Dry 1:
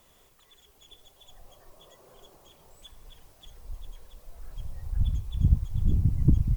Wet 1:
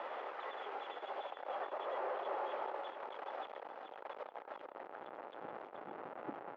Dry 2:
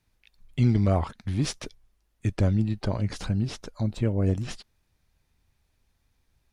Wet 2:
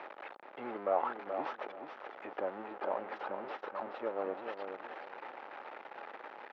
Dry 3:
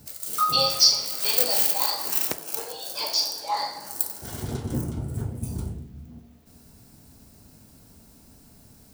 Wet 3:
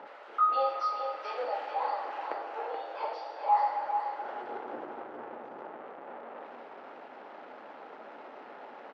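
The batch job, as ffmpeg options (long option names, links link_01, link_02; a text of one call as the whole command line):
ffmpeg -i in.wav -af "aeval=exprs='val(0)+0.5*0.0473*sgn(val(0))':channel_layout=same,highpass=frequency=370:width=0.5412,highpass=frequency=370:width=1.3066,equalizer=frequency=560:width_type=q:width=4:gain=5,equalizer=frequency=830:width_type=q:width=4:gain=9,equalizer=frequency=1300:width_type=q:width=4:gain=5,equalizer=frequency=2300:width_type=q:width=4:gain=-3,lowpass=frequency=2300:width=0.5412,lowpass=frequency=2300:width=1.3066,aecho=1:1:428|856|1284:0.447|0.103|0.0236,volume=-9dB" out.wav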